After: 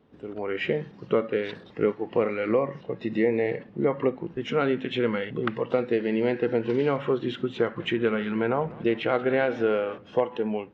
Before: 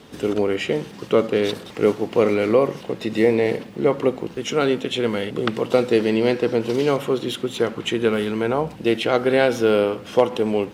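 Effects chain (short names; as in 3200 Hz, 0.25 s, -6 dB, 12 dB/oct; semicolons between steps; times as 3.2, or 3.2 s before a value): tape spacing loss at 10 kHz 37 dB; AGC; dynamic EQ 1900 Hz, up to +7 dB, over -34 dBFS, Q 0.85; compressor 2:1, threshold -18 dBFS, peak gain reduction 7 dB; spectral noise reduction 9 dB; 7.58–9.98 warbling echo 0.185 s, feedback 69%, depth 220 cents, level -21 dB; gain -5 dB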